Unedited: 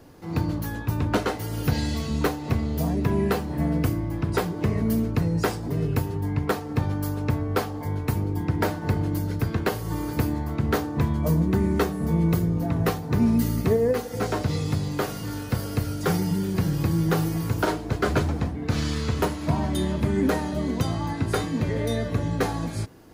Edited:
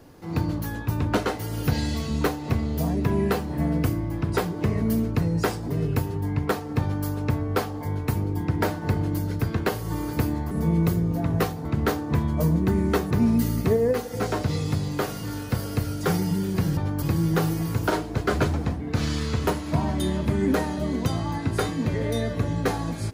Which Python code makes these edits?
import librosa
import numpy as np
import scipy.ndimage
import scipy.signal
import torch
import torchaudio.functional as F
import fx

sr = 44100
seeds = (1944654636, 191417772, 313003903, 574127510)

y = fx.edit(x, sr, fx.duplicate(start_s=6.81, length_s=0.25, to_s=16.77),
    fx.move(start_s=11.97, length_s=1.14, to_s=10.51), tone=tone)